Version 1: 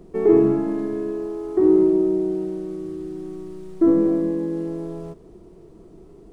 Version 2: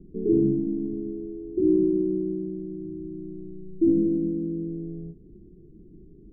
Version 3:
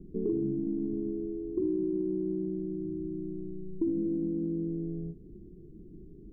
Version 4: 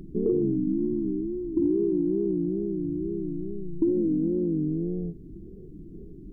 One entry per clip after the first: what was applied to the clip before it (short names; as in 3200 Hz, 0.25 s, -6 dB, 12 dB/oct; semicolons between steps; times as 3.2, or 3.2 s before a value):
inverse Chebyshev low-pass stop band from 1400 Hz, stop band 70 dB; ending taper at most 240 dB/s
compressor 5:1, threshold -28 dBFS, peak gain reduction 11 dB
wow and flutter 140 cents; spectral gain 0.58–1.61, 390–850 Hz -27 dB; gain +6 dB